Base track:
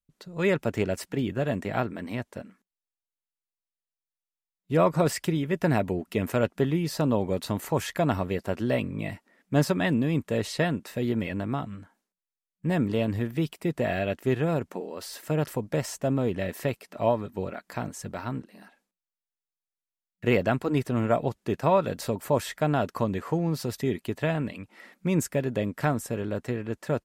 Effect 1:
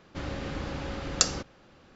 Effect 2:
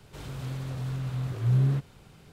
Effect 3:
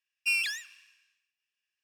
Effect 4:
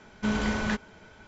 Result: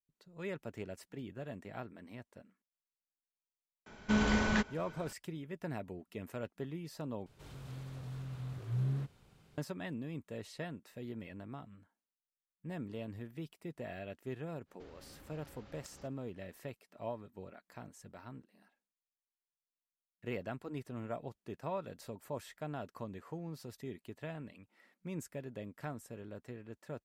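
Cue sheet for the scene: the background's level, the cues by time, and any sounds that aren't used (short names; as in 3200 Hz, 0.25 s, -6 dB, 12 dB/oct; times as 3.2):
base track -17 dB
3.86 add 4 -2 dB
7.26 replace with 2 -11 dB
14.65 add 1 -17.5 dB, fades 0.05 s + compressor, threshold -35 dBFS
not used: 3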